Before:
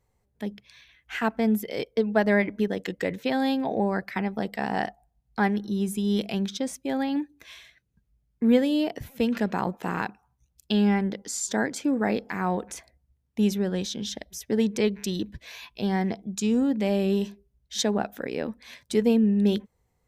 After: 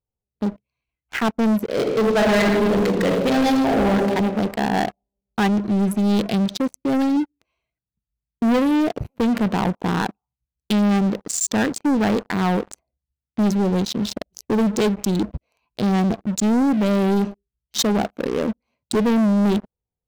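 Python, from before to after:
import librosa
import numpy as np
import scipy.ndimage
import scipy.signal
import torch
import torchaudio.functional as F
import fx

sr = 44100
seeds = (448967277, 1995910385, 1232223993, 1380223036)

y = fx.reverb_throw(x, sr, start_s=1.7, length_s=2.22, rt60_s=1.5, drr_db=-0.5)
y = fx.wiener(y, sr, points=25)
y = fx.high_shelf(y, sr, hz=5100.0, db=4.0)
y = fx.leveller(y, sr, passes=5)
y = y * 10.0 ** (-6.5 / 20.0)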